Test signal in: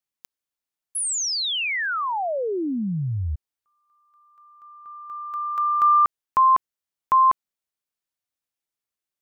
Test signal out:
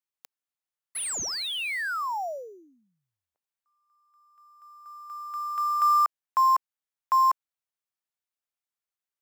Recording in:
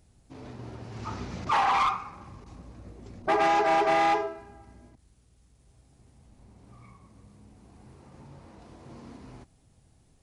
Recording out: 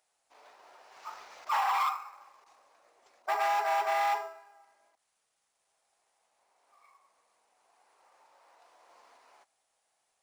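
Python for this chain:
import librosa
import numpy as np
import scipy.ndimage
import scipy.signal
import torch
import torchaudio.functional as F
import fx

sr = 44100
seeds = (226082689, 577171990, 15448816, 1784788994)

p1 = scipy.signal.sosfilt(scipy.signal.butter(4, 660.0, 'highpass', fs=sr, output='sos'), x)
p2 = fx.sample_hold(p1, sr, seeds[0], rate_hz=6400.0, jitter_pct=0)
p3 = p1 + (p2 * librosa.db_to_amplitude(-11.0))
y = p3 * librosa.db_to_amplitude(-6.0)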